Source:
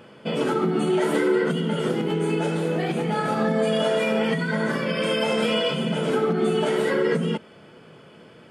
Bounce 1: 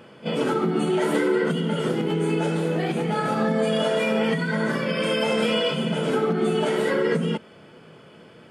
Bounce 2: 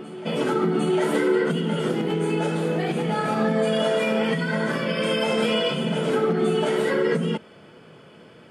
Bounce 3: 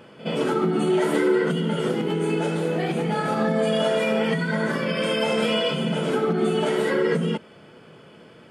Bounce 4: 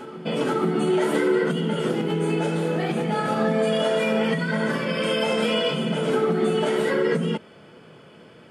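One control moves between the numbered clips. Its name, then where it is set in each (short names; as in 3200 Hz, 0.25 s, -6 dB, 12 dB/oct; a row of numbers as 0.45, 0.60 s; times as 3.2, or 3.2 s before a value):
reverse echo, time: 31, 754, 65, 482 ms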